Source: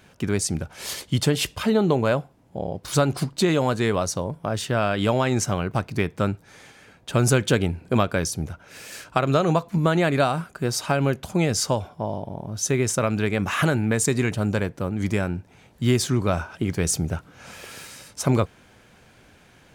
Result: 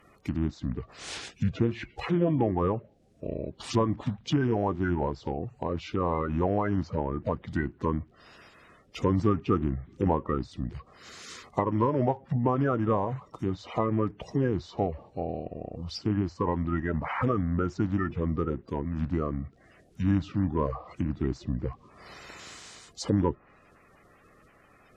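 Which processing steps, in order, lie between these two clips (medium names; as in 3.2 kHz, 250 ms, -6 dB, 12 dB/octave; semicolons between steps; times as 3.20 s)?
coarse spectral quantiser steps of 30 dB; wide varispeed 0.791×; low-pass that closes with the level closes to 1.5 kHz, closed at -21.5 dBFS; trim -4.5 dB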